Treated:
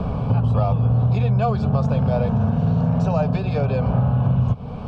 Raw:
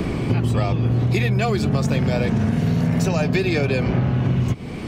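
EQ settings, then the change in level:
low-pass filter 2,100 Hz 12 dB per octave
parametric band 460 Hz +2.5 dB 0.39 octaves
phaser with its sweep stopped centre 820 Hz, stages 4
+3.5 dB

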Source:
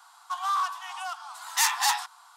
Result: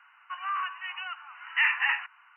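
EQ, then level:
high-pass with resonance 2,000 Hz, resonance Q 1.9
linear-phase brick-wall low-pass 3,000 Hz
+2.0 dB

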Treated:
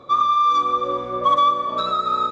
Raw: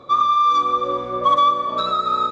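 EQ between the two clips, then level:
parametric band 4,300 Hz −2 dB 0.28 octaves
−1.0 dB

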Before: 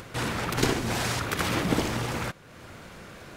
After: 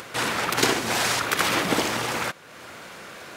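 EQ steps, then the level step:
high-pass filter 550 Hz 6 dB per octave
+7.0 dB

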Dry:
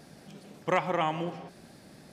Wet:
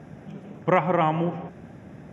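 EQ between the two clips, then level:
moving average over 10 samples
high-pass filter 63 Hz
parametric band 82 Hz +8.5 dB 1.9 octaves
+6.5 dB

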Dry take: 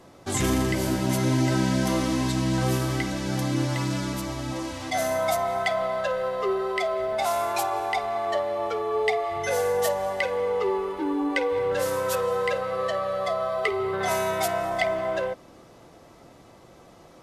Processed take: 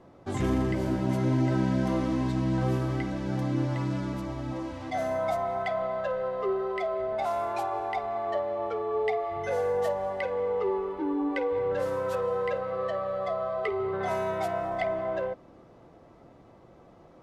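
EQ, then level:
low-pass filter 1,100 Hz 6 dB per octave
−2.0 dB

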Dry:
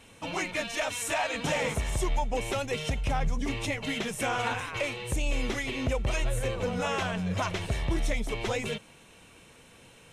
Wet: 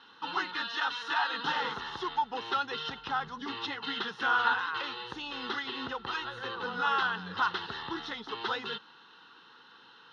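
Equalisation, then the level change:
loudspeaker in its box 410–4,600 Hz, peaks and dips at 860 Hz +6 dB, 1,400 Hz +7 dB, 4,000 Hz +3 dB
phaser with its sweep stopped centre 2,300 Hz, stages 6
+2.5 dB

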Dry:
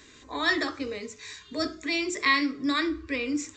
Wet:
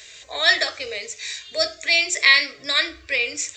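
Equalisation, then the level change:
drawn EQ curve 140 Hz 0 dB, 270 Hz −15 dB, 470 Hz +5 dB, 670 Hz +14 dB, 950 Hz −2 dB, 2,300 Hz +15 dB
−3.0 dB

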